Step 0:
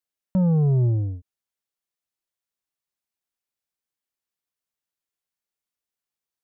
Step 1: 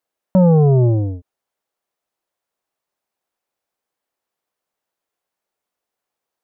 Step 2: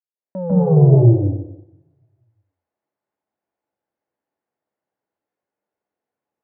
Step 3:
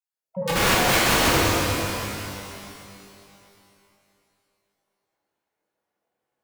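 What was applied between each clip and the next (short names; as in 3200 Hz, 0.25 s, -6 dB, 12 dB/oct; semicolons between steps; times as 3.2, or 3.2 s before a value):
bell 640 Hz +13 dB 2.7 oct; gain +3 dB
opening faded in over 0.83 s; LPF 1100 Hz 6 dB/oct; reverb RT60 0.90 s, pre-delay 0.146 s, DRR -3 dB; gain -11 dB
random spectral dropouts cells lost 33%; wrapped overs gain 18 dB; shimmer reverb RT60 2.8 s, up +12 st, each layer -8 dB, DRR -6.5 dB; gain -1.5 dB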